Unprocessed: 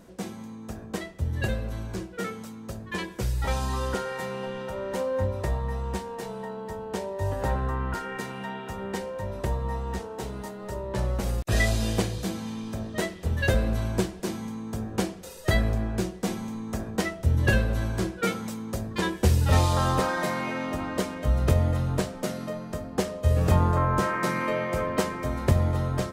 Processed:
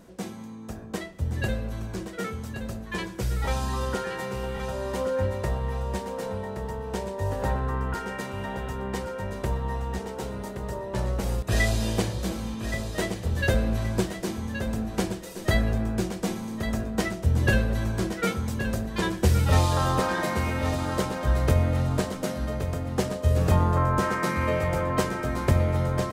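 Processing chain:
repeating echo 1,122 ms, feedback 31%, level −8.5 dB

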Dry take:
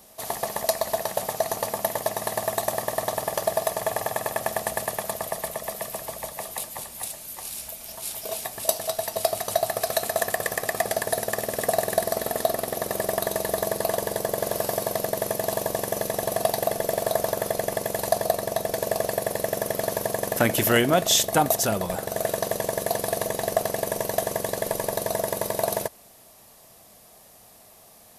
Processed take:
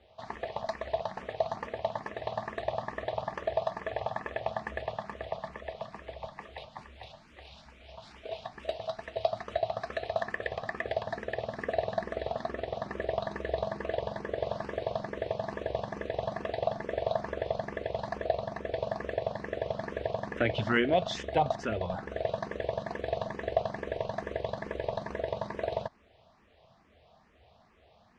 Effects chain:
low-pass filter 3,600 Hz 24 dB per octave
parametric band 70 Hz +11 dB 0.71 octaves
frequency shifter mixed with the dry sound +2.3 Hz
level −4 dB

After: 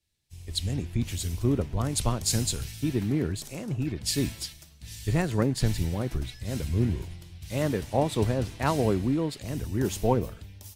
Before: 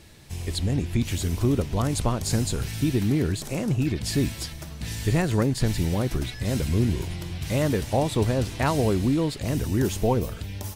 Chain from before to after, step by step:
multiband upward and downward expander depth 100%
level −3.5 dB

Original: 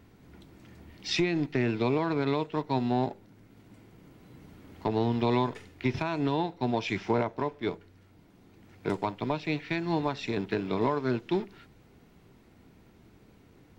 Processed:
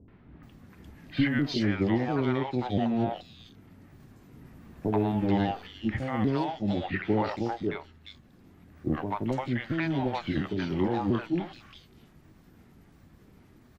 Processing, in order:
pitch shifter swept by a sawtooth −5 semitones, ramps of 694 ms
three-band delay without the direct sound lows, mids, highs 80/430 ms, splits 580/3,100 Hz
level +3 dB

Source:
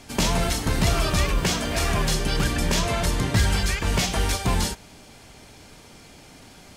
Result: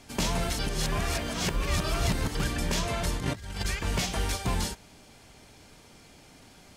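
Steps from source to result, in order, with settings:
0:00.59–0:02.35: reverse
0:03.16–0:03.65: compressor whose output falls as the input rises −26 dBFS, ratio −0.5
level −6 dB

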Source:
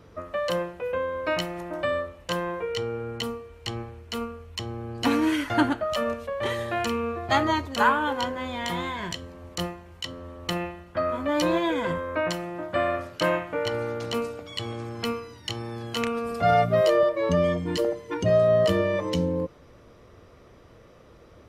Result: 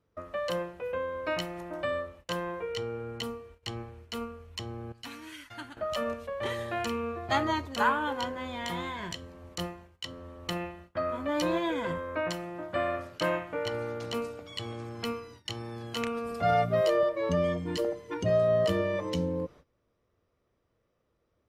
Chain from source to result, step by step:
0:04.92–0:05.77: guitar amp tone stack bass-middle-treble 5-5-5
noise gate −45 dBFS, range −19 dB
level −5 dB

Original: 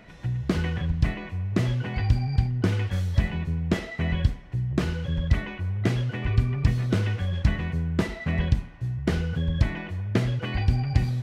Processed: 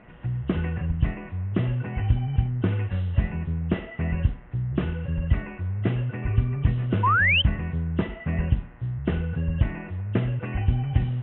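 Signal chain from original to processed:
hearing-aid frequency compression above 2,600 Hz 4 to 1
hum with harmonics 120 Hz, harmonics 18, −56 dBFS −1 dB per octave
high-frequency loss of the air 420 metres
sound drawn into the spectrogram rise, 0:07.03–0:07.42, 940–3,200 Hz −20 dBFS

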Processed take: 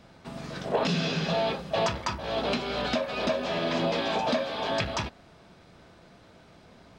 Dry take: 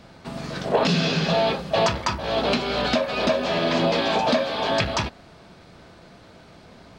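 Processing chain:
notch filter 4,400 Hz, Q 20
level −6 dB

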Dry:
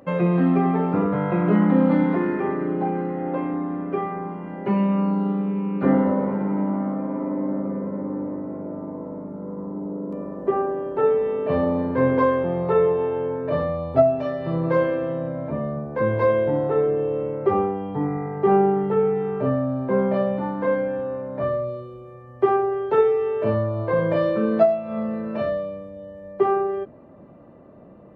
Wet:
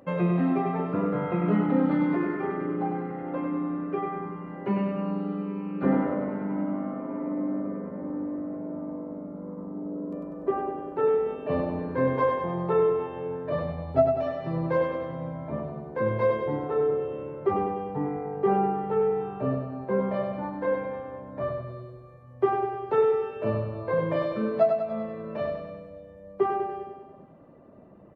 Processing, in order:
reverb reduction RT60 0.65 s
on a send: repeating echo 98 ms, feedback 59%, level −5 dB
on the sum: level −4.5 dB

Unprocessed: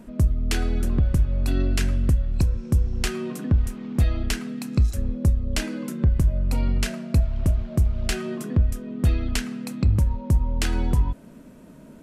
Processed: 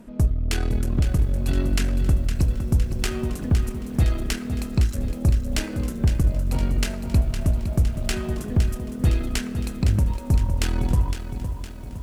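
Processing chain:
harmonic generator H 3 −28 dB, 4 −21 dB, 8 −29 dB, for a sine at −11.5 dBFS
feedback echo at a low word length 511 ms, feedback 55%, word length 8 bits, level −9 dB

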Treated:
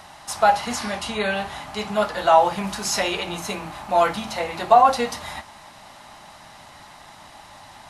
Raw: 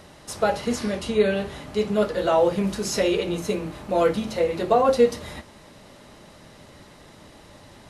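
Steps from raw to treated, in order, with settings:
low shelf with overshoot 610 Hz −8 dB, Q 3
level +4.5 dB

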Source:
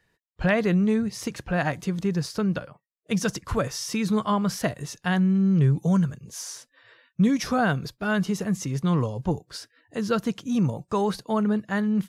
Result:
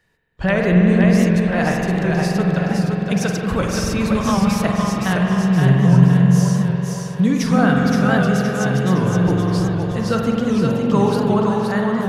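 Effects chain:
echo with a time of its own for lows and highs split 340 Hz, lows 314 ms, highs 518 ms, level −4 dB
spring reverb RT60 3.4 s, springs 45 ms, chirp 50 ms, DRR 0 dB
wow of a warped record 78 rpm, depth 100 cents
level +3 dB

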